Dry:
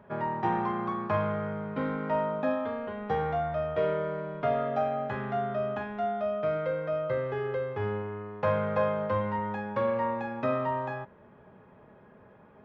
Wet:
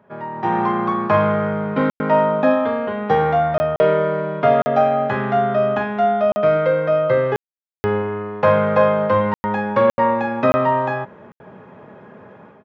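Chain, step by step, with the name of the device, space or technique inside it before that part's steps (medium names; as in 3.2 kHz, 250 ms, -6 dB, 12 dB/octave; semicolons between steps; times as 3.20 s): call with lost packets (high-pass 120 Hz 12 dB/octave; resampled via 16 kHz; level rider gain up to 13.5 dB; lost packets bursts)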